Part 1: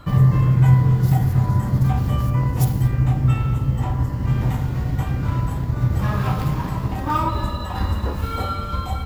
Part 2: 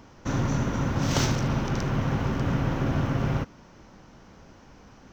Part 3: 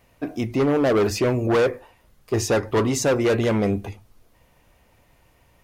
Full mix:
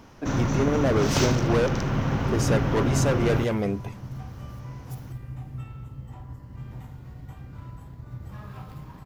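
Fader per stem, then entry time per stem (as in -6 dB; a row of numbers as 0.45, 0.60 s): -19.0, +1.0, -5.0 dB; 2.30, 0.00, 0.00 s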